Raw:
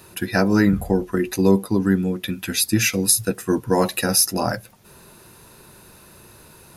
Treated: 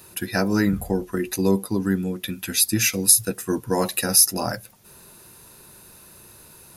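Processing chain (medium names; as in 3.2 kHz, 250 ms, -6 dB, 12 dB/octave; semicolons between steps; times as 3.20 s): treble shelf 5.1 kHz +8 dB; trim -4 dB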